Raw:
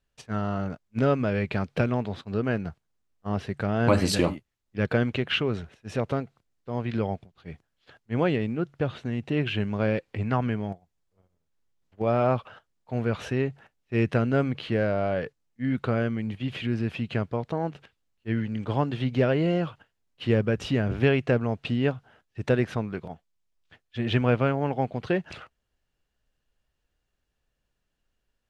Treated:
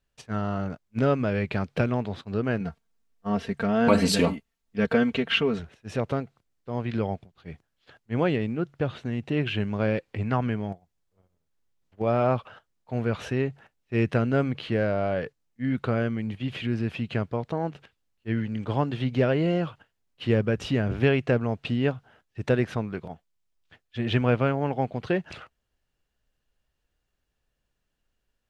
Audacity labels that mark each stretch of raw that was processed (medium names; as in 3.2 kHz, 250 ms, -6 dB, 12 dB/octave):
2.600000	5.590000	comb 4.4 ms, depth 78%